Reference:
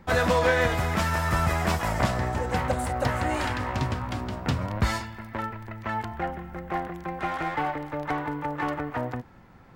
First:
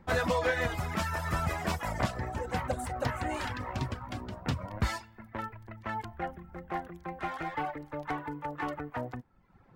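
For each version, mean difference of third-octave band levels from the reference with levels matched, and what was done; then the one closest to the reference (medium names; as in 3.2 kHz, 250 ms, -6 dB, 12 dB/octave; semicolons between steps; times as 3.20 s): 3.0 dB: reverb removal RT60 0.82 s; tape noise reduction on one side only decoder only; trim -5 dB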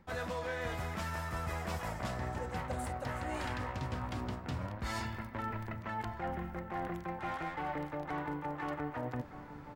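4.0 dB: reverse; compression 10:1, threshold -35 dBFS, peak gain reduction 18 dB; reverse; echo from a far wall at 210 m, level -11 dB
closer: first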